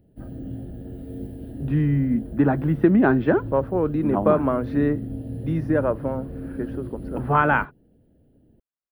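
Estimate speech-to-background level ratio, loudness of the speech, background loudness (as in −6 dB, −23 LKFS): 13.0 dB, −22.0 LKFS, −35.0 LKFS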